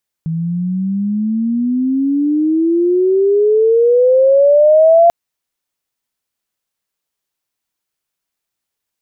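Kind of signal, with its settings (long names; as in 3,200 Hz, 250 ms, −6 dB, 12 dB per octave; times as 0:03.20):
glide logarithmic 160 Hz → 690 Hz −16 dBFS → −4.5 dBFS 4.84 s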